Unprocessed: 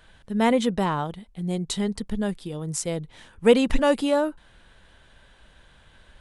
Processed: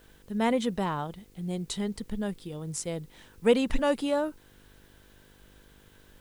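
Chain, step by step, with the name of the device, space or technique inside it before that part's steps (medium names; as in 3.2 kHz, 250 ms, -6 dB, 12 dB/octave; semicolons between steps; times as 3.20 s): video cassette with head-switching buzz (mains buzz 50 Hz, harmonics 10, -55 dBFS -2 dB/octave; white noise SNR 35 dB); trim -5.5 dB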